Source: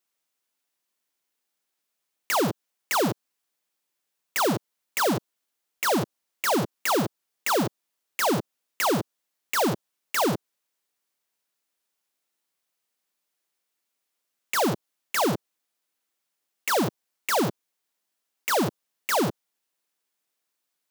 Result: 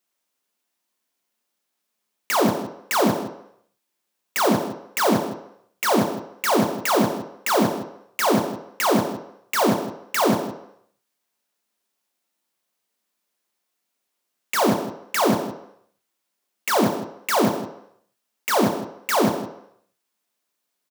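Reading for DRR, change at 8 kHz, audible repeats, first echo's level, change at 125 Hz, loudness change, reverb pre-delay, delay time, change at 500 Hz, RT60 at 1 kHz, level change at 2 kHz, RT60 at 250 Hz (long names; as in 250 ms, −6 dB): 3.5 dB, +2.5 dB, 1, −13.0 dB, +3.0 dB, +4.0 dB, 3 ms, 161 ms, +5.0 dB, 0.80 s, +3.0 dB, 0.65 s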